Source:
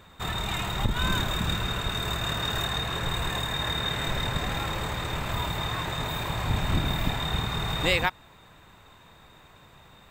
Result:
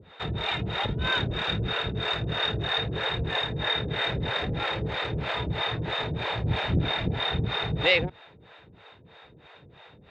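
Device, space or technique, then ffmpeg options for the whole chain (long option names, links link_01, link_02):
guitar amplifier with harmonic tremolo: -filter_complex "[0:a]acrossover=split=440[link_01][link_02];[link_01]aeval=exprs='val(0)*(1-1/2+1/2*cos(2*PI*3.1*n/s))':channel_layout=same[link_03];[link_02]aeval=exprs='val(0)*(1-1/2-1/2*cos(2*PI*3.1*n/s))':channel_layout=same[link_04];[link_03][link_04]amix=inputs=2:normalize=0,asoftclip=type=tanh:threshold=-19dB,highpass=77,equalizer=frequency=220:width_type=q:width=4:gain=-4,equalizer=frequency=460:width_type=q:width=4:gain=6,equalizer=frequency=1100:width_type=q:width=4:gain=-8,lowpass=frequency=4100:width=0.5412,lowpass=frequency=4100:width=1.3066,volume=7dB"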